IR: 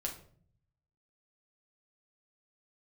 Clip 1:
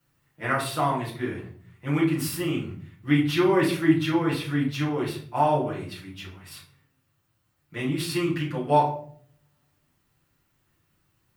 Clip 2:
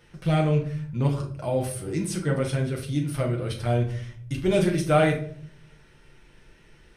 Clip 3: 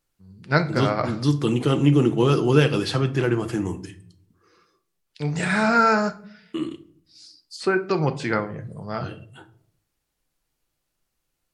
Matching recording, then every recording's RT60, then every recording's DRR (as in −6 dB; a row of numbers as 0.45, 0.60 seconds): 2; 0.55, 0.55, 0.55 seconds; −8.0, −0.5, 8.0 decibels